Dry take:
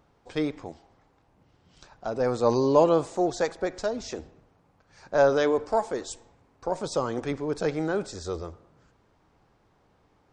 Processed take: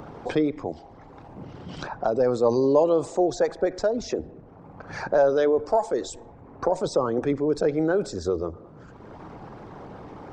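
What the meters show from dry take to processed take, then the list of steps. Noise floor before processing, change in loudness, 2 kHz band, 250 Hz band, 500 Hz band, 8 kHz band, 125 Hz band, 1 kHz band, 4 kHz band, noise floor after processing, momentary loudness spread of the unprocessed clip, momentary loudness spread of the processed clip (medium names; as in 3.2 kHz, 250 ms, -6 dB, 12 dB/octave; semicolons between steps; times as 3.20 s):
-65 dBFS, +2.5 dB, 0.0 dB, +3.0 dB, +3.0 dB, 0.0 dB, +1.0 dB, +0.5 dB, -0.5 dB, -47 dBFS, 17 LU, 22 LU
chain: resonances exaggerated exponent 1.5; three bands compressed up and down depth 70%; trim +4 dB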